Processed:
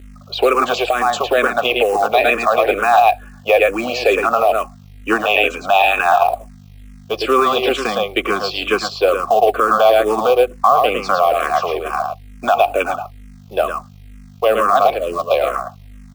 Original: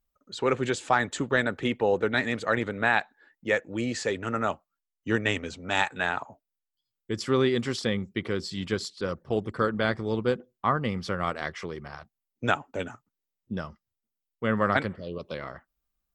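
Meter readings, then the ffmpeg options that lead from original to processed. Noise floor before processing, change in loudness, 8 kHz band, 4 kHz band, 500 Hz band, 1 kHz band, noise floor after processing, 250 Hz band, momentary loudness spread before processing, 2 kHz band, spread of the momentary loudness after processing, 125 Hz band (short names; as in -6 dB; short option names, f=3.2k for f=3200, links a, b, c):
under -85 dBFS, +12.5 dB, +8.0 dB, +12.5 dB, +14.0 dB, +16.5 dB, -41 dBFS, +3.5 dB, 13 LU, +9.0 dB, 10 LU, -4.0 dB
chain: -filter_complex "[0:a]asplit=3[a][b][c];[a]bandpass=f=730:t=q:w=8,volume=0dB[d];[b]bandpass=f=1.09k:t=q:w=8,volume=-6dB[e];[c]bandpass=f=2.44k:t=q:w=8,volume=-9dB[f];[d][e][f]amix=inputs=3:normalize=0,highshelf=f=4.9k:g=3.5,asplit=2[g][h];[h]aecho=0:1:109:0.501[i];[g][i]amix=inputs=2:normalize=0,acontrast=63,acrossover=split=160[j][k];[j]acrusher=bits=3:dc=4:mix=0:aa=0.000001[l];[l][k]amix=inputs=2:normalize=0,acrossover=split=370|3000[m][n][o];[n]acompressor=threshold=-30dB:ratio=8[p];[m][p][o]amix=inputs=3:normalize=0,aeval=exprs='val(0)+0.00158*(sin(2*PI*50*n/s)+sin(2*PI*2*50*n/s)/2+sin(2*PI*3*50*n/s)/3+sin(2*PI*4*50*n/s)/4+sin(2*PI*5*50*n/s)/5)':c=same,bandreject=f=2.2k:w=26,acrusher=bits=6:mode=log:mix=0:aa=0.000001,bass=f=250:g=-7,treble=f=4k:g=0,alimiter=level_in=27.5dB:limit=-1dB:release=50:level=0:latency=1,asplit=2[q][r];[r]afreqshift=-2.2[s];[q][s]amix=inputs=2:normalize=1"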